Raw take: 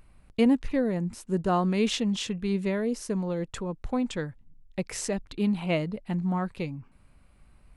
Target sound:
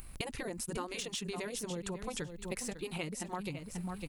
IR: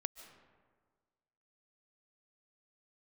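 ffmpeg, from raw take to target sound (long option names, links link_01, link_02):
-af "aemphasis=mode=production:type=75fm,aecho=1:1:1044|2088:0.2|0.0379,atempo=1.9,deesser=0.55,afftfilt=real='re*lt(hypot(re,im),0.316)':imag='im*lt(hypot(re,im),0.316)':win_size=1024:overlap=0.75,acompressor=threshold=-42dB:ratio=12,bandreject=frequency=610:width=12,volume=6.5dB"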